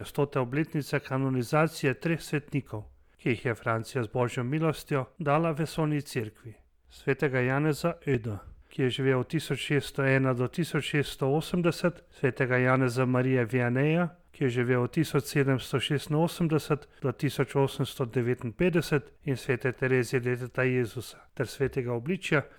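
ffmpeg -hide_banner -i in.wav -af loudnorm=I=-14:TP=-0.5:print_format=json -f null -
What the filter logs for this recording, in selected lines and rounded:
"input_i" : "-28.8",
"input_tp" : "-12.2",
"input_lra" : "3.5",
"input_thresh" : "-39.0",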